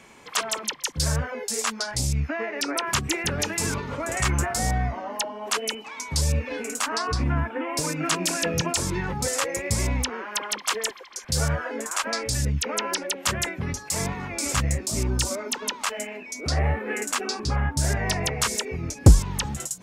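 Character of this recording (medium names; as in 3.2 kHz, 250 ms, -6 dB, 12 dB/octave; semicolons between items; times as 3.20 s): noise floor -42 dBFS; spectral tilt -3.5 dB/octave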